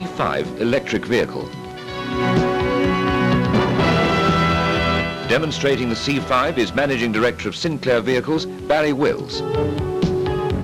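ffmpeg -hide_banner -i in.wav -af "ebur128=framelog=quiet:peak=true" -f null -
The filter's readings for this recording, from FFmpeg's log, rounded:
Integrated loudness:
  I:         -19.3 LUFS
  Threshold: -29.4 LUFS
Loudness range:
  LRA:         2.6 LU
  Threshold: -39.0 LUFS
  LRA low:   -20.4 LUFS
  LRA high:  -17.8 LUFS
True peak:
  Peak:       -3.2 dBFS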